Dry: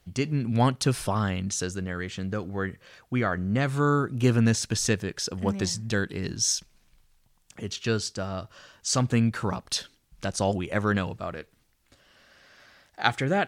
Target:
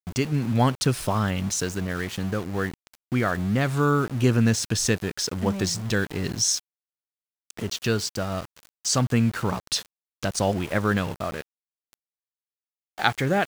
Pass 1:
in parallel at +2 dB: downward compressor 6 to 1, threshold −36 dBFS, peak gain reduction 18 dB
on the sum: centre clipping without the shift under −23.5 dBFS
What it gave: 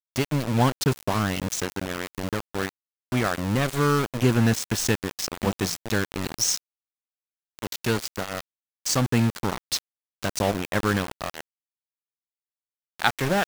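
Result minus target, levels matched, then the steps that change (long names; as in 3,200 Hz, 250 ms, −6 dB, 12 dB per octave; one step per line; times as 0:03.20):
centre clipping without the shift: distortion +13 dB
change: centre clipping without the shift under −34 dBFS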